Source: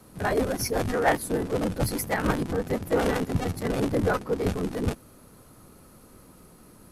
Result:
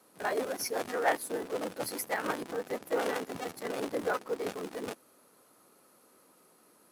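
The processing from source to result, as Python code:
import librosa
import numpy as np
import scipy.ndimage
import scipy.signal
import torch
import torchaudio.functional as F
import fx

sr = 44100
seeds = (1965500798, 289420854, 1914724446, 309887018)

p1 = scipy.signal.sosfilt(scipy.signal.butter(2, 380.0, 'highpass', fs=sr, output='sos'), x)
p2 = fx.quant_dither(p1, sr, seeds[0], bits=6, dither='none')
p3 = p1 + (p2 * 10.0 ** (-11.0 / 20.0))
y = p3 * 10.0 ** (-7.0 / 20.0)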